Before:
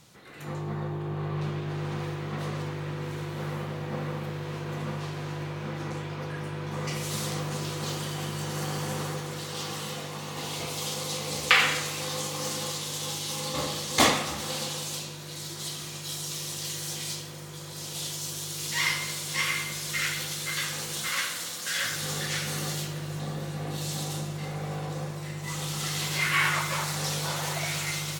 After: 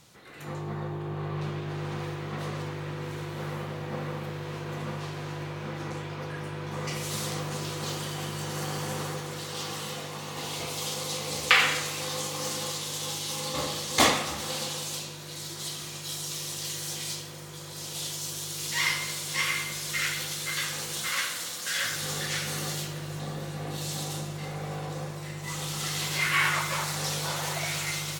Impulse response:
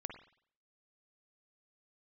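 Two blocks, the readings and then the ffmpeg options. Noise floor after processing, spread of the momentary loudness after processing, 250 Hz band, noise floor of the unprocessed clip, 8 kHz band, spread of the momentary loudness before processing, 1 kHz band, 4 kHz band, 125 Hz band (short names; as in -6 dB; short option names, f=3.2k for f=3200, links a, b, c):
-40 dBFS, 10 LU, -1.5 dB, -39 dBFS, 0.0 dB, 9 LU, 0.0 dB, 0.0 dB, -2.0 dB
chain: -af "equalizer=f=180:w=1.1:g=-2.5"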